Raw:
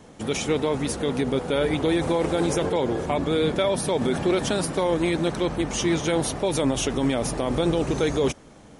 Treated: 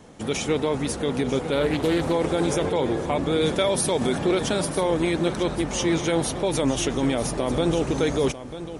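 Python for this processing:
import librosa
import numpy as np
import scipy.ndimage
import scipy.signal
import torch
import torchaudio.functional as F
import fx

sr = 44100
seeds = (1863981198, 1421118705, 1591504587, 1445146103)

y = fx.high_shelf(x, sr, hz=4300.0, db=7.5, at=(3.41, 4.15))
y = y + 10.0 ** (-12.5 / 20.0) * np.pad(y, (int(944 * sr / 1000.0), 0))[:len(y)]
y = fx.doppler_dist(y, sr, depth_ms=0.21, at=(1.52, 2.13))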